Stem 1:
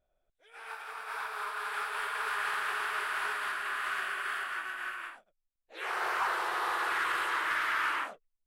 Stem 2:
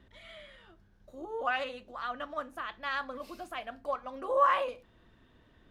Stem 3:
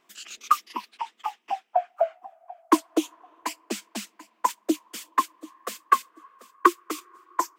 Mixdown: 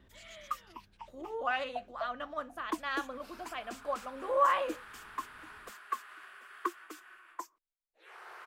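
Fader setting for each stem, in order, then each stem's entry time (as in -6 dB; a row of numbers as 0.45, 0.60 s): -17.5, -1.5, -16.5 dB; 2.25, 0.00, 0.00 s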